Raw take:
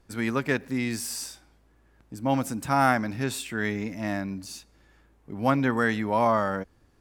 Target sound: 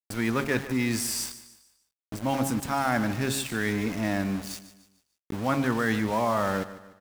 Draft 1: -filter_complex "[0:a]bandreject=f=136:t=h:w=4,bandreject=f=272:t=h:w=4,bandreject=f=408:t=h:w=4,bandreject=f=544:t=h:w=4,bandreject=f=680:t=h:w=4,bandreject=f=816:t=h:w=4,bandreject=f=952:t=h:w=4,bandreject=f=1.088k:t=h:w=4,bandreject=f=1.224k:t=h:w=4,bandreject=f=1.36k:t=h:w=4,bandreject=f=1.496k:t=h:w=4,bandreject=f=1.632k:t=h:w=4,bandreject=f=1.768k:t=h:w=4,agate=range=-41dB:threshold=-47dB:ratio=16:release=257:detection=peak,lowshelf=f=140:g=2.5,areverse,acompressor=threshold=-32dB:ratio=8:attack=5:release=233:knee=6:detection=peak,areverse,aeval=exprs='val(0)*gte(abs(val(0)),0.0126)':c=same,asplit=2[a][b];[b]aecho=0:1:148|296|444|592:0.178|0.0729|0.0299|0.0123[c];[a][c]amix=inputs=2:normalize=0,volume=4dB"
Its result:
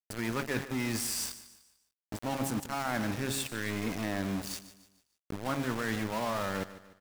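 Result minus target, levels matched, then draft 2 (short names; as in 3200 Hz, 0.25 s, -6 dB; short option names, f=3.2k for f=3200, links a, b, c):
compressor: peak gain reduction +7 dB
-filter_complex "[0:a]bandreject=f=136:t=h:w=4,bandreject=f=272:t=h:w=4,bandreject=f=408:t=h:w=4,bandreject=f=544:t=h:w=4,bandreject=f=680:t=h:w=4,bandreject=f=816:t=h:w=4,bandreject=f=952:t=h:w=4,bandreject=f=1.088k:t=h:w=4,bandreject=f=1.224k:t=h:w=4,bandreject=f=1.36k:t=h:w=4,bandreject=f=1.496k:t=h:w=4,bandreject=f=1.632k:t=h:w=4,bandreject=f=1.768k:t=h:w=4,agate=range=-41dB:threshold=-47dB:ratio=16:release=257:detection=peak,lowshelf=f=140:g=2.5,areverse,acompressor=threshold=-24dB:ratio=8:attack=5:release=233:knee=6:detection=peak,areverse,aeval=exprs='val(0)*gte(abs(val(0)),0.0126)':c=same,asplit=2[a][b];[b]aecho=0:1:148|296|444|592:0.178|0.0729|0.0299|0.0123[c];[a][c]amix=inputs=2:normalize=0,volume=4dB"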